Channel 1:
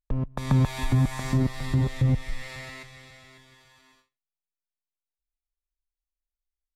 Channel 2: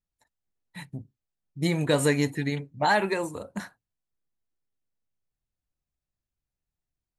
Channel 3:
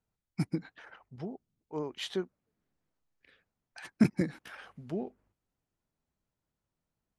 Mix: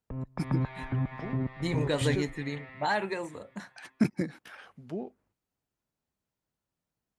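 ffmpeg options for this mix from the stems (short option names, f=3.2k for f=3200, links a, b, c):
-filter_complex "[0:a]lowpass=f=2.5k:w=0.5412,lowpass=f=2.5k:w=1.3066,volume=-6.5dB[a];[1:a]lowpass=7.7k,volume=-6dB[b];[2:a]volume=-0.5dB[c];[a][b][c]amix=inputs=3:normalize=0,highpass=f=95:p=1"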